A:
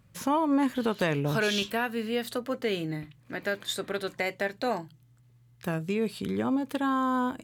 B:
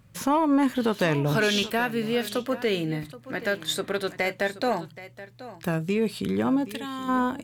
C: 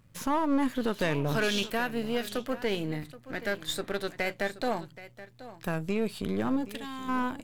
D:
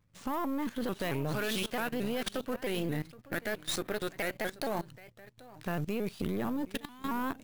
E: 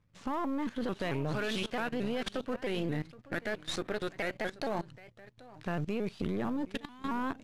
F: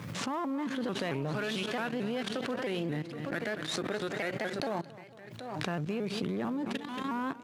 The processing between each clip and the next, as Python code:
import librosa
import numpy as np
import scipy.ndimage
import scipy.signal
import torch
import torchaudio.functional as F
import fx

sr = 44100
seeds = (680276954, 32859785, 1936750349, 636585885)

y1 = fx.spec_box(x, sr, start_s=6.71, length_s=0.38, low_hz=250.0, high_hz=1700.0, gain_db=-13)
y1 = 10.0 ** (-17.0 / 20.0) * np.tanh(y1 / 10.0 ** (-17.0 / 20.0))
y1 = y1 + 10.0 ** (-16.0 / 20.0) * np.pad(y1, (int(776 * sr / 1000.0), 0))[:len(y1)]
y1 = y1 * 10.0 ** (4.5 / 20.0)
y2 = np.where(y1 < 0.0, 10.0 ** (-7.0 / 20.0) * y1, y1)
y2 = y2 * 10.0 ** (-2.5 / 20.0)
y3 = fx.level_steps(y2, sr, step_db=19)
y3 = fx.sample_hold(y3, sr, seeds[0], rate_hz=14000.0, jitter_pct=0)
y3 = fx.vibrato_shape(y3, sr, shape='saw_up', rate_hz=4.5, depth_cents=160.0)
y3 = y3 * 10.0 ** (5.5 / 20.0)
y4 = fx.air_absorb(y3, sr, metres=71.0)
y5 = scipy.signal.sosfilt(scipy.signal.butter(4, 120.0, 'highpass', fs=sr, output='sos'), y4)
y5 = fx.echo_feedback(y5, sr, ms=228, feedback_pct=26, wet_db=-18)
y5 = fx.pre_swell(y5, sr, db_per_s=37.0)